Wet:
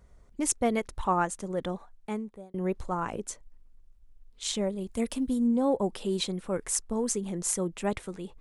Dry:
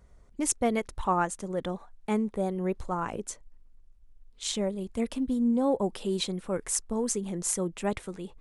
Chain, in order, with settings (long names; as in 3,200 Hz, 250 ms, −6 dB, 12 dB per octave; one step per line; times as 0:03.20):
0:01.75–0:02.54: fade out
0:04.88–0:05.47: high-shelf EQ 6,500 Hz +10 dB